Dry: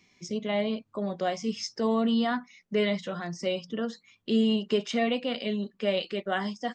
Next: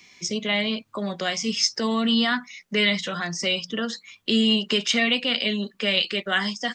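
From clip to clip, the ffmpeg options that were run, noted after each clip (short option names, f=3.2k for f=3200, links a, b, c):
-filter_complex "[0:a]tiltshelf=f=770:g=-5.5,acrossover=split=320|1300[a][b][c];[b]acompressor=threshold=-41dB:ratio=6[d];[a][d][c]amix=inputs=3:normalize=0,volume=8.5dB"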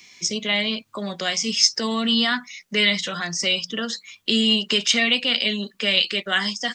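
-af "highshelf=f=2.5k:g=7.5,volume=-1dB"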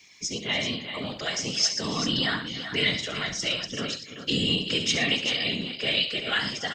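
-filter_complex "[0:a]afftfilt=real='hypot(re,im)*cos(2*PI*random(0))':imag='hypot(re,im)*sin(2*PI*random(1))':win_size=512:overlap=0.75,asplit=2[a][b];[b]aecho=0:1:68|113|289|386:0.299|0.178|0.119|0.355[c];[a][c]amix=inputs=2:normalize=0"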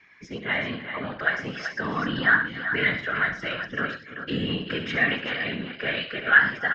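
-af "lowpass=f=1.6k:t=q:w=6.3"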